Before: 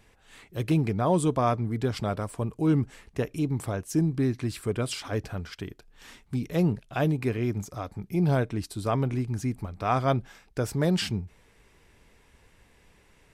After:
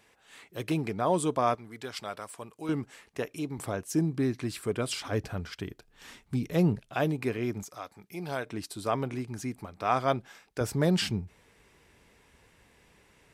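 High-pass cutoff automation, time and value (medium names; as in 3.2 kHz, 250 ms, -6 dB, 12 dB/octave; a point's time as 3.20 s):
high-pass 6 dB/octave
370 Hz
from 1.55 s 1.4 kHz
from 2.69 s 500 Hz
from 3.58 s 200 Hz
from 4.93 s 61 Hz
from 6.90 s 260 Hz
from 7.63 s 1.1 kHz
from 8.46 s 350 Hz
from 10.61 s 87 Hz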